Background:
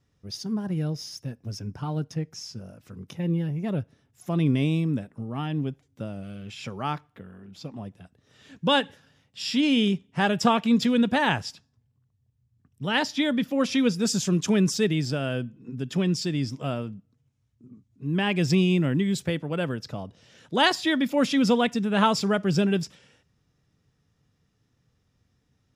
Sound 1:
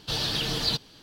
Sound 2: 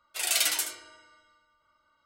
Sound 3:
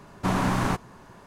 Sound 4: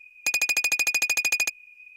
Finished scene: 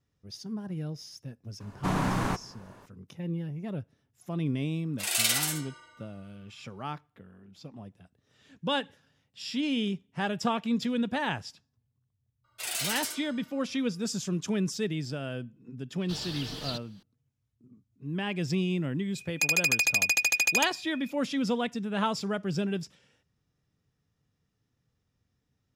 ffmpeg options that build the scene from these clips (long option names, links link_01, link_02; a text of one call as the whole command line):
ffmpeg -i bed.wav -i cue0.wav -i cue1.wav -i cue2.wav -i cue3.wav -filter_complex "[2:a]asplit=2[link_01][link_02];[0:a]volume=-7.5dB[link_03];[link_01]aecho=1:1:47|58:0.473|0.531[link_04];[link_02]asoftclip=type=tanh:threshold=-26dB[link_05];[3:a]atrim=end=1.26,asetpts=PTS-STARTPTS,volume=-4dB,afade=type=in:duration=0.004:curve=hsin,afade=type=out:start_time=1.256:duration=0.004:curve=hsin,adelay=1600[link_06];[link_04]atrim=end=2.05,asetpts=PTS-STARTPTS,volume=-2dB,afade=type=in:duration=0.004:curve=hsin,afade=type=out:start_time=2.046:duration=0.004:curve=hsin,adelay=4840[link_07];[link_05]atrim=end=2.05,asetpts=PTS-STARTPTS,volume=-1.5dB,afade=type=in:duration=0.004:curve=hsin,afade=type=out:start_time=2.046:duration=0.004:curve=hsin,adelay=12440[link_08];[1:a]atrim=end=1.02,asetpts=PTS-STARTPTS,volume=-10.5dB,afade=type=in:duration=0.004:curve=hsin,afade=type=out:start_time=1.016:duration=0.004:curve=hsin,adelay=16010[link_09];[4:a]atrim=end=1.96,asetpts=PTS-STARTPTS,volume=-1.5dB,afade=type=in:duration=0.004:curve=hsin,afade=type=out:start_time=1.956:duration=0.004:curve=hsin,adelay=19150[link_10];[link_03][link_06][link_07][link_08][link_09][link_10]amix=inputs=6:normalize=0" out.wav